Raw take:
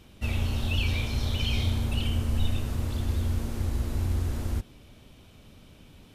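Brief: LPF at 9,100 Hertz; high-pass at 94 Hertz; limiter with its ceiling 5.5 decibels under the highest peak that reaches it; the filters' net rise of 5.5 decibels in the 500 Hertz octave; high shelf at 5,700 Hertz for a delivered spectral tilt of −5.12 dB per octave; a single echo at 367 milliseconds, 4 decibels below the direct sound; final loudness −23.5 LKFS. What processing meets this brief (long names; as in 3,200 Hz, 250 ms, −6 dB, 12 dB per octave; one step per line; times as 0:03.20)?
high-pass filter 94 Hz
low-pass filter 9,100 Hz
parametric band 500 Hz +7 dB
high-shelf EQ 5,700 Hz −5 dB
brickwall limiter −23.5 dBFS
single-tap delay 367 ms −4 dB
level +9.5 dB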